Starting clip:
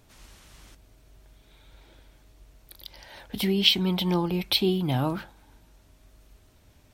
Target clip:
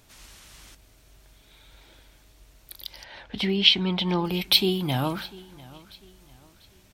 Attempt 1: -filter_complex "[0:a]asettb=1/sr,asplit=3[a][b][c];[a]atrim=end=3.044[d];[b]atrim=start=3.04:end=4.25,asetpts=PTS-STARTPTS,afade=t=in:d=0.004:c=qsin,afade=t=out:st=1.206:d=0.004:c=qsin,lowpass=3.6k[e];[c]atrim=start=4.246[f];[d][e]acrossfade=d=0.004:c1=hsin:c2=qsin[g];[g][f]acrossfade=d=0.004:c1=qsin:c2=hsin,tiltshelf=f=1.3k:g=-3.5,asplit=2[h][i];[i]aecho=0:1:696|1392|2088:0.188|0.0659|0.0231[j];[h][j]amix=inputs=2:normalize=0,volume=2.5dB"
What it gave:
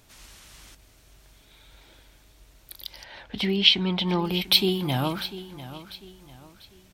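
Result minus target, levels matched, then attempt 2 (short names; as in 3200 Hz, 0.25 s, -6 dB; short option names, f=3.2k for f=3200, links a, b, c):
echo-to-direct +6.5 dB
-filter_complex "[0:a]asettb=1/sr,asplit=3[a][b][c];[a]atrim=end=3.044[d];[b]atrim=start=3.04:end=4.25,asetpts=PTS-STARTPTS,afade=t=in:d=0.004:c=qsin,afade=t=out:st=1.206:d=0.004:c=qsin,lowpass=3.6k[e];[c]atrim=start=4.246[f];[d][e]acrossfade=d=0.004:c1=hsin:c2=qsin[g];[g][f]acrossfade=d=0.004:c1=qsin:c2=hsin,tiltshelf=f=1.3k:g=-3.5,asplit=2[h][i];[i]aecho=0:1:696|1392|2088:0.0891|0.0312|0.0109[j];[h][j]amix=inputs=2:normalize=0,volume=2.5dB"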